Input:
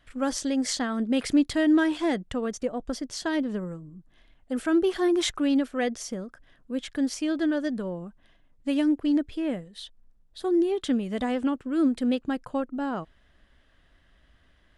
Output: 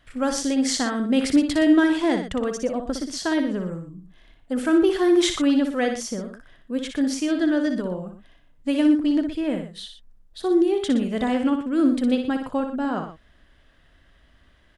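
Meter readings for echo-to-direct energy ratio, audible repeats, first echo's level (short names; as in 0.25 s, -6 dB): -6.0 dB, 2, -7.0 dB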